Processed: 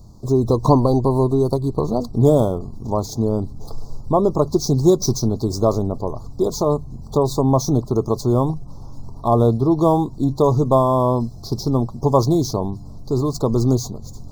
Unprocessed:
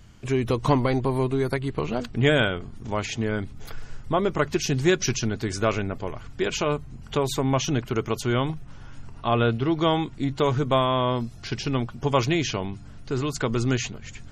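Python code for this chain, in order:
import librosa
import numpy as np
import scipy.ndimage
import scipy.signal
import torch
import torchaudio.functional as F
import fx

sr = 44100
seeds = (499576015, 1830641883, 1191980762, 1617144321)

y = scipy.signal.medfilt(x, 5)
y = scipy.signal.sosfilt(scipy.signal.cheby2(4, 40, [1500.0, 3100.0], 'bandstop', fs=sr, output='sos'), y)
y = y * librosa.db_to_amplitude(7.0)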